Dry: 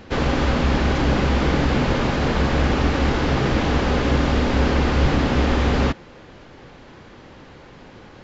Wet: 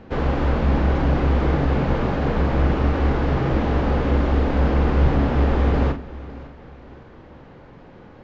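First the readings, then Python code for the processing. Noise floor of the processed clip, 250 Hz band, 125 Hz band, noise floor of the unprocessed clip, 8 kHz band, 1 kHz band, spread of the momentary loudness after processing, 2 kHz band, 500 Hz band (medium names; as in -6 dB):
-45 dBFS, -1.5 dB, +1.0 dB, -44 dBFS, no reading, -2.0 dB, 4 LU, -5.5 dB, -1.0 dB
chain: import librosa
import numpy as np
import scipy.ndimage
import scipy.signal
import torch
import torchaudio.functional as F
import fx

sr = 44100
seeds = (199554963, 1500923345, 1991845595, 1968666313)

p1 = fx.lowpass(x, sr, hz=1000.0, slope=6)
p2 = fx.hum_notches(p1, sr, base_hz=50, count=8)
p3 = fx.doubler(p2, sr, ms=43.0, db=-8.0)
y = p3 + fx.echo_feedback(p3, sr, ms=555, feedback_pct=36, wet_db=-18, dry=0)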